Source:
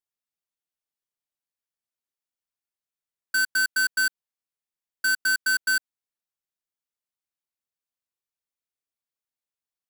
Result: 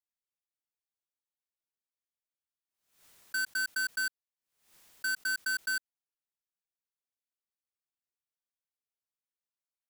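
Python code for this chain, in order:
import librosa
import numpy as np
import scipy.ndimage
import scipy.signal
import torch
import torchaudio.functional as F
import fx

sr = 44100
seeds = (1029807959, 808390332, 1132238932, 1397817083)

y = fx.pre_swell(x, sr, db_per_s=100.0)
y = F.gain(torch.from_numpy(y), -9.0).numpy()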